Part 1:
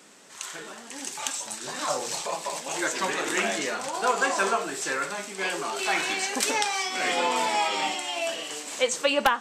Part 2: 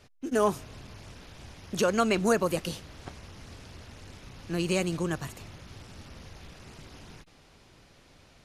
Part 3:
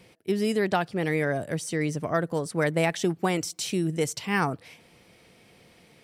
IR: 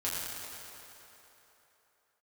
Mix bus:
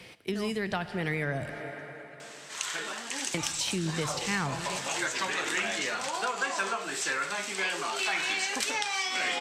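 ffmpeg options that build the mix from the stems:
-filter_complex "[0:a]adelay=2200,volume=0.944[s0];[1:a]volume=0.316[s1];[2:a]volume=1.06,asplit=3[s2][s3][s4];[s2]atrim=end=1.5,asetpts=PTS-STARTPTS,afade=t=out:st=1.496:d=0.004:c=hsin[s5];[s3]atrim=start=1.5:end=3.34,asetpts=PTS-STARTPTS,volume=0[s6];[s4]atrim=start=3.34,asetpts=PTS-STARTPTS,afade=t=in:d=0.004:c=hsin[s7];[s5][s6][s7]concat=n=3:v=0:a=1,asplit=3[s8][s9][s10];[s9]volume=0.15[s11];[s10]apad=whole_len=372230[s12];[s1][s12]sidechaingate=range=0.0224:threshold=0.00355:ratio=16:detection=peak[s13];[3:a]atrim=start_sample=2205[s14];[s11][s14]afir=irnorm=-1:irlink=0[s15];[s0][s13][s8][s15]amix=inputs=4:normalize=0,acrossover=split=150[s16][s17];[s17]acompressor=threshold=0.0178:ratio=4[s18];[s16][s18]amix=inputs=2:normalize=0,equalizer=f=2700:w=0.37:g=8.5"

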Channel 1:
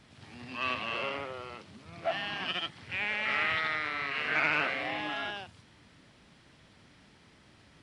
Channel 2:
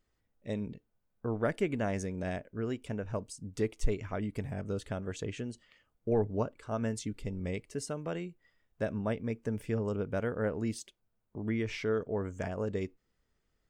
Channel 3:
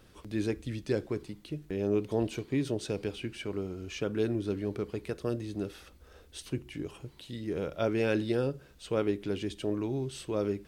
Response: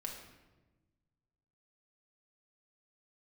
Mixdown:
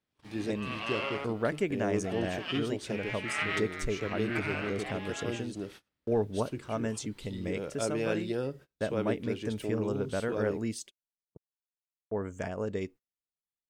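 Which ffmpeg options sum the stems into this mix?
-filter_complex "[0:a]volume=1[s0];[1:a]highshelf=f=2700:g=2.5,volume=1.12,asplit=3[s1][s2][s3];[s1]atrim=end=11.37,asetpts=PTS-STARTPTS,afade=t=out:st=11.366:d=0.004:c=hsin[s4];[s2]atrim=start=11.37:end=12.11,asetpts=PTS-STARTPTS,volume=0[s5];[s3]atrim=start=12.11,asetpts=PTS-STARTPTS,afade=t=in:d=0.004:c=hsin[s6];[s4][s5][s6]concat=n=3:v=0:a=1,asplit=2[s7][s8];[2:a]volume=0.708[s9];[s8]apad=whole_len=344951[s10];[s0][s10]sidechaincompress=threshold=0.00891:ratio=8:attack=16:release=219[s11];[s11][s7][s9]amix=inputs=3:normalize=0,agate=range=0.0355:threshold=0.00447:ratio=16:detection=peak,lowshelf=f=66:g=-10.5"

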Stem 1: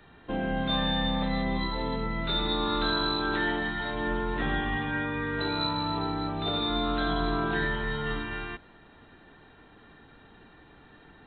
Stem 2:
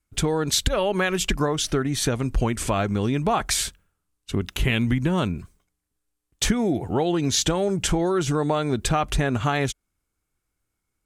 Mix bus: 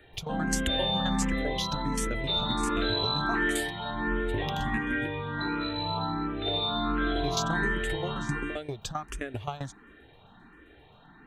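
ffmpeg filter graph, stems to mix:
-filter_complex "[0:a]volume=1.26[s0];[1:a]acompressor=threshold=0.0562:ratio=6,aeval=exprs='val(0)*pow(10,-18*if(lt(mod(7.6*n/s,1),2*abs(7.6)/1000),1-mod(7.6*n/s,1)/(2*abs(7.6)/1000),(mod(7.6*n/s,1)-2*abs(7.6)/1000)/(1-2*abs(7.6)/1000))/20)':c=same,volume=1.33,asplit=3[s1][s2][s3];[s1]atrim=end=5.08,asetpts=PTS-STARTPTS,afade=t=out:st=5.076:d=0.004:c=hsin[s4];[s2]atrim=start=5.08:end=7.15,asetpts=PTS-STARTPTS,volume=0[s5];[s3]atrim=start=7.15,asetpts=PTS-STARTPTS,afade=t=in:d=0.004:c=hsin[s6];[s4][s5][s6]concat=n=3:v=0:a=1[s7];[s0][s7]amix=inputs=2:normalize=0,asplit=2[s8][s9];[s9]afreqshift=1.4[s10];[s8][s10]amix=inputs=2:normalize=1"

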